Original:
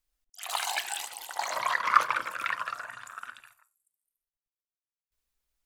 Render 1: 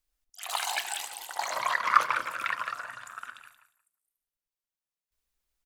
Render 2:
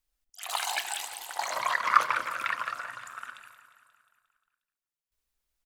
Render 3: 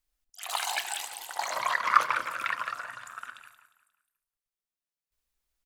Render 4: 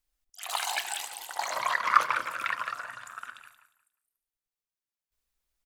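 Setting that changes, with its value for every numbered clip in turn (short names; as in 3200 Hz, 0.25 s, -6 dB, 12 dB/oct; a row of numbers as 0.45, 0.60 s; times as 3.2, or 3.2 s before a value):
feedback echo, feedback: 16, 62, 39, 25%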